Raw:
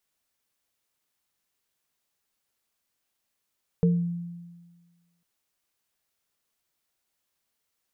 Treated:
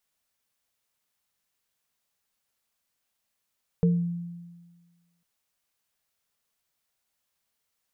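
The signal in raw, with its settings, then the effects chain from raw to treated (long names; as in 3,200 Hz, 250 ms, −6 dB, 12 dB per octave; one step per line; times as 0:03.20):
inharmonic partials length 1.40 s, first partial 172 Hz, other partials 456 Hz, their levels −5.5 dB, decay 1.47 s, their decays 0.31 s, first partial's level −16.5 dB
parametric band 340 Hz −6.5 dB 0.41 octaves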